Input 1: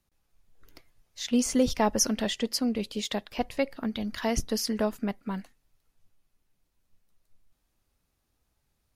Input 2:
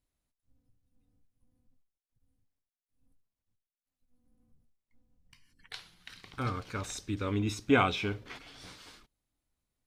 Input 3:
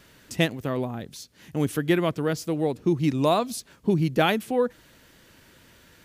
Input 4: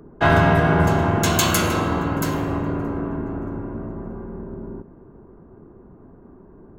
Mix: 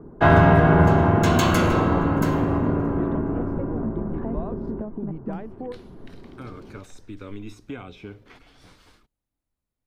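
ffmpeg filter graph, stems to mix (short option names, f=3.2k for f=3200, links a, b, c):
-filter_complex "[0:a]lowpass=1.1k,aemphasis=mode=reproduction:type=bsi,acompressor=threshold=-31dB:ratio=6,volume=1.5dB[a];[1:a]highshelf=f=8.6k:g=9,acrossover=split=160|650|1500[b][c][d][e];[b]acompressor=threshold=-46dB:ratio=4[f];[c]acompressor=threshold=-36dB:ratio=4[g];[d]acompressor=threshold=-52dB:ratio=4[h];[e]acompressor=threshold=-42dB:ratio=4[i];[f][g][h][i]amix=inputs=4:normalize=0,volume=0dB,asplit=2[j][k];[2:a]acompressor=threshold=-32dB:ratio=5,lowpass=1.3k,adelay=1100,volume=0dB[l];[3:a]adynamicequalizer=threshold=0.01:dfrequency=6800:dqfactor=0.7:tfrequency=6800:tqfactor=0.7:attack=5:release=100:ratio=0.375:range=2.5:mode=cutabove:tftype=highshelf,volume=2dB[m];[k]apad=whole_len=315295[n];[l][n]sidechaincompress=threshold=-45dB:ratio=8:attack=16:release=316[o];[a][j][o][m]amix=inputs=4:normalize=0,highshelf=f=2.6k:g=-11.5"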